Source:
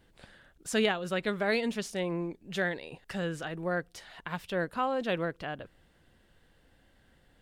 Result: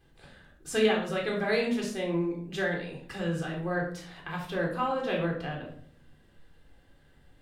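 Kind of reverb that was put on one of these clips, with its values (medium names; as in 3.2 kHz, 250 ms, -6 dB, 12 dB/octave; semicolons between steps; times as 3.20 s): simulated room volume 800 m³, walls furnished, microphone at 3.8 m; trim -4 dB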